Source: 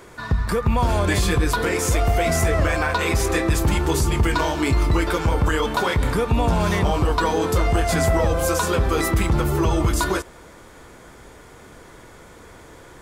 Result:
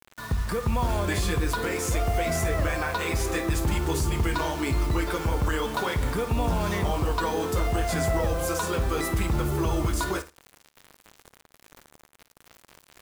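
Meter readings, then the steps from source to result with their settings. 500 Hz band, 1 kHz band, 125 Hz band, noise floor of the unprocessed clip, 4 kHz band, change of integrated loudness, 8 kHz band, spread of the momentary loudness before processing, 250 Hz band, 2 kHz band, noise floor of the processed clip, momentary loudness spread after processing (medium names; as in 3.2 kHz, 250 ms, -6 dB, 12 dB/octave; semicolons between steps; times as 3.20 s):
-6.5 dB, -6.5 dB, -6.0 dB, -45 dBFS, -6.0 dB, -6.0 dB, -6.0 dB, 2 LU, -6.0 dB, -6.5 dB, -63 dBFS, 2 LU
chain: word length cut 6-bit, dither none; flutter echo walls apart 9.3 m, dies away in 0.23 s; trim -6.5 dB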